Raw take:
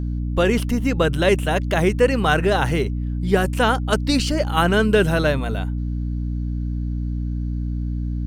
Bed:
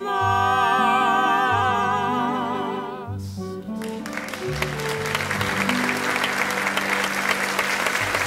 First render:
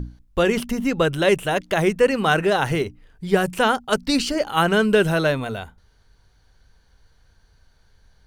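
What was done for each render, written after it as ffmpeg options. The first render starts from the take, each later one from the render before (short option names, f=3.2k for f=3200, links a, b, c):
-af "bandreject=f=60:t=h:w=6,bandreject=f=120:t=h:w=6,bandreject=f=180:t=h:w=6,bandreject=f=240:t=h:w=6,bandreject=f=300:t=h:w=6"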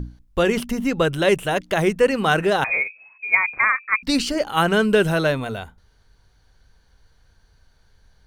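-filter_complex "[0:a]asettb=1/sr,asplit=3[a][b][c];[a]atrim=end=2.644[d];[b]atrim=start=2.64:end=4.03,asetpts=PTS-STARTPTS,afade=t=in:d=0.004:c=qsin,afade=t=out:st=1.386:d=0.004:c=qsin,lowpass=f=2.2k:t=q:w=0.5098,lowpass=f=2.2k:t=q:w=0.6013,lowpass=f=2.2k:t=q:w=0.9,lowpass=f=2.2k:t=q:w=2.563,afreqshift=-2600[e];[c]atrim=start=4.026[f];[d][e]acrossfade=d=0.004:c1=hsin:c2=qsin[g];[g][f]acrossfade=d=0.004:c1=qsin:c2=hsin"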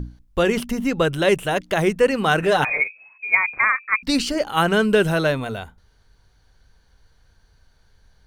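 -filter_complex "[0:a]asettb=1/sr,asplit=3[a][b][c];[a]atrim=end=2.424[d];[b]atrim=start=2.42:end=2.84,asetpts=PTS-STARTPTS,afade=t=in:d=0.004:c=qsin,afade=t=out:st=0.416:d=0.004:c=qsin,aecho=1:1:6.8:0.65,atrim=end_sample=18522[e];[c]atrim=start=2.836[f];[d][e]acrossfade=d=0.004:c1=hsin:c2=qsin[g];[g][f]acrossfade=d=0.004:c1=qsin:c2=hsin"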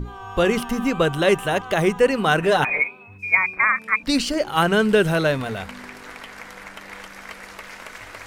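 -filter_complex "[1:a]volume=-16dB[a];[0:a][a]amix=inputs=2:normalize=0"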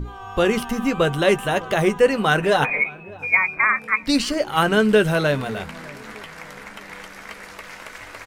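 -filter_complex "[0:a]asplit=2[a][b];[b]adelay=14,volume=-11.5dB[c];[a][c]amix=inputs=2:normalize=0,asplit=2[d][e];[e]adelay=605,lowpass=f=1.2k:p=1,volume=-21dB,asplit=2[f][g];[g]adelay=605,lowpass=f=1.2k:p=1,volume=0.49,asplit=2[h][i];[i]adelay=605,lowpass=f=1.2k:p=1,volume=0.49,asplit=2[j][k];[k]adelay=605,lowpass=f=1.2k:p=1,volume=0.49[l];[d][f][h][j][l]amix=inputs=5:normalize=0"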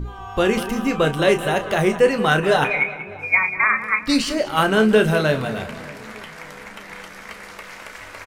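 -filter_complex "[0:a]asplit=2[a][b];[b]adelay=32,volume=-9.5dB[c];[a][c]amix=inputs=2:normalize=0,asplit=2[d][e];[e]adelay=188,lowpass=f=4k:p=1,volume=-13dB,asplit=2[f][g];[g]adelay=188,lowpass=f=4k:p=1,volume=0.44,asplit=2[h][i];[i]adelay=188,lowpass=f=4k:p=1,volume=0.44,asplit=2[j][k];[k]adelay=188,lowpass=f=4k:p=1,volume=0.44[l];[d][f][h][j][l]amix=inputs=5:normalize=0"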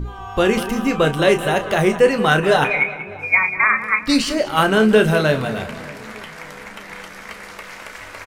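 -af "volume=2dB,alimiter=limit=-3dB:level=0:latency=1"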